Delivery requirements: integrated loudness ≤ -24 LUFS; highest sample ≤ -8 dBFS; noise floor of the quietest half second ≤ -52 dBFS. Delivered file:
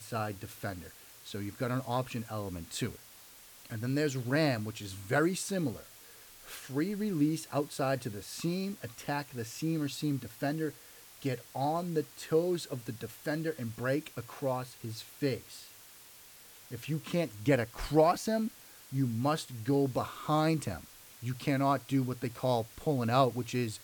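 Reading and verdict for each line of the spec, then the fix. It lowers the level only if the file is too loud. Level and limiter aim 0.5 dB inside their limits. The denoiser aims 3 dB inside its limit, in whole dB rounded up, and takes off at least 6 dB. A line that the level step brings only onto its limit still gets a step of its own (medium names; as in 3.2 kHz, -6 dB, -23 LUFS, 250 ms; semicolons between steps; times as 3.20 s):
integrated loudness -33.5 LUFS: pass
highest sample -12.5 dBFS: pass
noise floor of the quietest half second -54 dBFS: pass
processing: none needed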